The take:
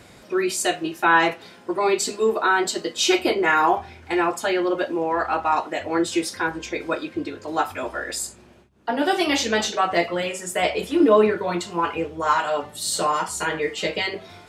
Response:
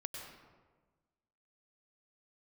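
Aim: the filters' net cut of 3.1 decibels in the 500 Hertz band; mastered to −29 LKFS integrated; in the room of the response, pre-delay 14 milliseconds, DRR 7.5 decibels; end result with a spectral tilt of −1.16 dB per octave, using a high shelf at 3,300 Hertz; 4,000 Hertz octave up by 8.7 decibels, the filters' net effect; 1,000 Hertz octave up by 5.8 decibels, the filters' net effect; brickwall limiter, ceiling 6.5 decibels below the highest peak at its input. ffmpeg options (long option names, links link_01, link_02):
-filter_complex "[0:a]equalizer=frequency=500:width_type=o:gain=-7,equalizer=frequency=1000:width_type=o:gain=8,highshelf=frequency=3300:gain=6.5,equalizer=frequency=4000:width_type=o:gain=6,alimiter=limit=-7dB:level=0:latency=1,asplit=2[link_01][link_02];[1:a]atrim=start_sample=2205,adelay=14[link_03];[link_02][link_03]afir=irnorm=-1:irlink=0,volume=-6dB[link_04];[link_01][link_04]amix=inputs=2:normalize=0,volume=-10dB"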